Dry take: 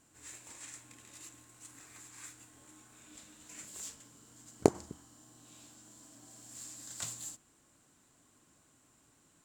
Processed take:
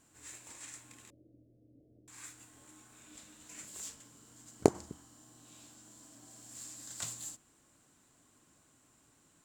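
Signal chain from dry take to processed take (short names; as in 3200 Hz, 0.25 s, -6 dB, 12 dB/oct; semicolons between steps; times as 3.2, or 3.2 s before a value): 1.1–2.08 steep low-pass 620 Hz 72 dB/oct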